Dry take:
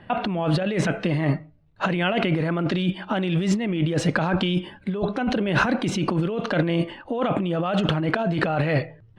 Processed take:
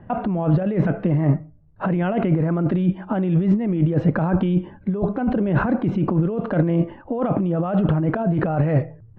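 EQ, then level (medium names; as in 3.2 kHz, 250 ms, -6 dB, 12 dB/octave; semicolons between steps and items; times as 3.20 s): low-pass 1.2 kHz 12 dB/octave; bass shelf 220 Hz +7.5 dB; 0.0 dB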